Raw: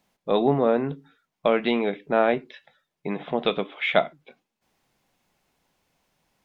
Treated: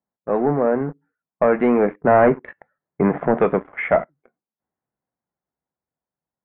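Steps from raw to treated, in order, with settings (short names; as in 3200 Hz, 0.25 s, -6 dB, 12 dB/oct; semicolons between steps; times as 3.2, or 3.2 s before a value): Doppler pass-by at 2.66, 9 m/s, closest 4.6 m; HPF 48 Hz 24 dB/oct; sample leveller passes 3; steep low-pass 1900 Hz 36 dB/oct; mismatched tape noise reduction decoder only; gain +4 dB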